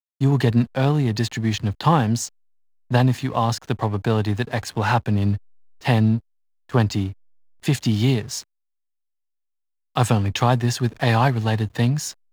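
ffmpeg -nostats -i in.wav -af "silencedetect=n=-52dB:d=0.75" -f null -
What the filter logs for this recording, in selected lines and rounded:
silence_start: 8.44
silence_end: 9.95 | silence_duration: 1.52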